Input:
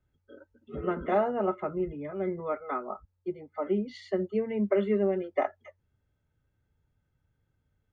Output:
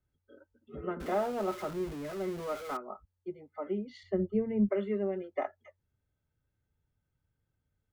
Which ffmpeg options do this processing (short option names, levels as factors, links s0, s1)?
-filter_complex "[0:a]asettb=1/sr,asplit=3[s0][s1][s2];[s0]atrim=end=1.004[s3];[s1]atrim=start=1:end=2.77,asetpts=PTS-STARTPTS,afade=t=in:d=0.004:c=qsin,afade=t=out:st=1.766:d=0.004:c=qsin,aeval=exprs='val(0)+0.5*0.02*sgn(val(0))':c=same[s4];[s2]atrim=start=2.766[s5];[s3][s4]acrossfade=d=0.004:c1=hsin:c2=qsin[s6];[s6][s5]acrossfade=d=0.004:c1=qsin:c2=hsin,asettb=1/sr,asplit=3[s7][s8][s9];[s7]atrim=end=4.034[s10];[s8]atrim=start=4.03:end=4.69,asetpts=PTS-STARTPTS,afade=t=in:d=0.004:c=qsin,afade=t=out:st=0.656:d=0.004:c=qsin,aemphasis=mode=reproduction:type=riaa[s11];[s9]atrim=start=4.686[s12];[s10][s11]acrossfade=d=0.004:c1=hsin:c2=qsin[s13];[s13][s12]acrossfade=d=0.004:c1=qsin:c2=hsin,volume=0.501"